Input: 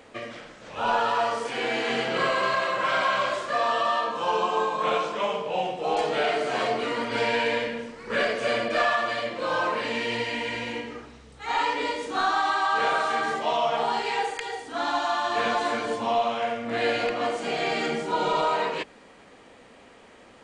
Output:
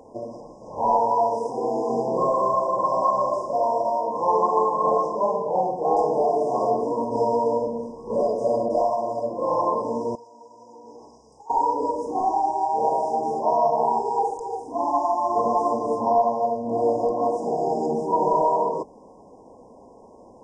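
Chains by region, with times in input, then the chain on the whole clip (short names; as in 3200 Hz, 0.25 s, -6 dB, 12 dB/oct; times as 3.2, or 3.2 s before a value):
10.15–11.5 LPF 5000 Hz + tilt +4.5 dB/oct + compressor 20:1, threshold -38 dBFS
whole clip: tone controls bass -2 dB, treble -12 dB; FFT band-reject 1100–4900 Hz; gain +5 dB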